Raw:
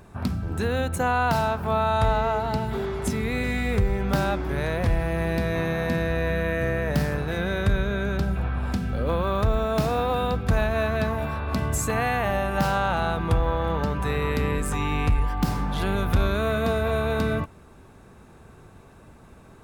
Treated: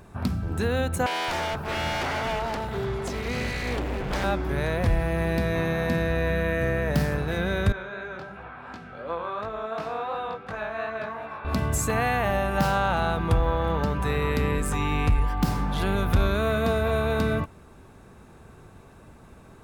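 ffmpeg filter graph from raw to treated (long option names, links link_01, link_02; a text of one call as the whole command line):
ffmpeg -i in.wav -filter_complex "[0:a]asettb=1/sr,asplit=3[link_01][link_02][link_03];[link_01]atrim=end=1.064[link_04];[link_02]atrim=start=1.06:end=4.24,asetpts=PTS-STARTPTS,afade=type=in:duration=0.004:curve=qsin,afade=type=out:start_time=3.176:duration=0.004:curve=qsin,acrossover=split=7200[link_05][link_06];[link_06]acompressor=threshold=-56dB:ratio=4:attack=1:release=60[link_07];[link_05][link_07]amix=inputs=2:normalize=0,aeval=exprs='0.075*(abs(mod(val(0)/0.075+3,4)-2)-1)':channel_layout=same,acrossover=split=220[link_08][link_09];[link_08]adelay=220[link_10];[link_10][link_09]amix=inputs=2:normalize=0,atrim=end_sample=140238[link_11];[link_03]atrim=start=4.236[link_12];[link_04][link_11]acrossfade=duration=0.004:curve1=hsin:curve2=qsin[link_13];[link_13][link_12]acrossfade=duration=0.004:curve1=qsin:curve2=hsin,asettb=1/sr,asplit=3[link_14][link_15][link_16];[link_14]atrim=end=7.724[link_17];[link_15]atrim=start=7.72:end=11.45,asetpts=PTS-STARTPTS,afade=type=in:duration=0.004:curve=qsin,afade=type=out:start_time=3.726:duration=0.004:curve=qsin,bandpass=frequency=1200:width_type=q:width=0.69,flanger=delay=17.5:depth=5.9:speed=2.8[link_18];[link_16]atrim=start=11.446[link_19];[link_17][link_18]acrossfade=duration=0.004:curve1=hsin:curve2=qsin[link_20];[link_20][link_19]acrossfade=duration=0.004:curve1=qsin:curve2=hsin" out.wav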